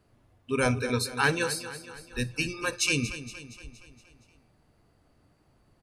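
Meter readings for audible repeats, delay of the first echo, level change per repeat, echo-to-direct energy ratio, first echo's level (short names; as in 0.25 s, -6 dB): 5, 0.234 s, -5.5 dB, -11.5 dB, -13.0 dB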